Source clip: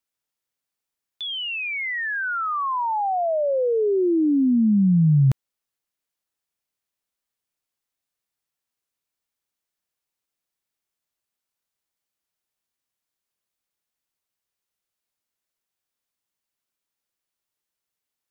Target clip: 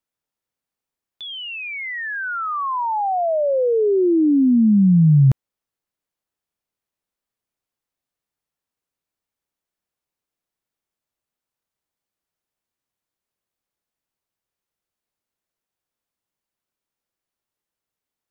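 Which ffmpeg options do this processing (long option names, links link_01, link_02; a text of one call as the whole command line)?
ffmpeg -i in.wav -af "tiltshelf=frequency=1500:gain=4" out.wav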